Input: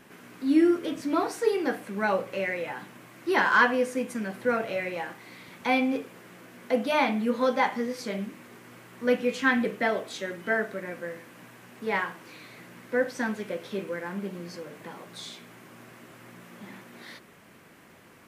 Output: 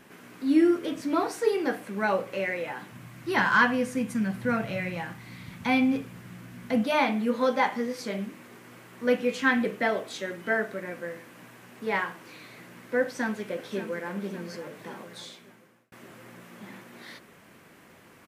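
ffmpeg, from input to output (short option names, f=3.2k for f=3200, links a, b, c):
-filter_complex "[0:a]asplit=3[a][b][c];[a]afade=t=out:st=2.91:d=0.02[d];[b]asubboost=boost=11:cutoff=130,afade=t=in:st=2.91:d=0.02,afade=t=out:st=6.83:d=0.02[e];[c]afade=t=in:st=6.83:d=0.02[f];[d][e][f]amix=inputs=3:normalize=0,asplit=2[g][h];[h]afade=t=in:st=13.01:d=0.01,afade=t=out:st=14.1:d=0.01,aecho=0:1:570|1140|1710|2280|2850|3420|3990:0.251189|0.150713|0.0904279|0.0542567|0.032554|0.0195324|0.0117195[i];[g][i]amix=inputs=2:normalize=0,asplit=2[j][k];[j]atrim=end=15.92,asetpts=PTS-STARTPTS,afade=t=out:st=15.01:d=0.91[l];[k]atrim=start=15.92,asetpts=PTS-STARTPTS,afade=t=in:d=0.004:c=hsin[m];[l][m]concat=n=2:v=0:a=1"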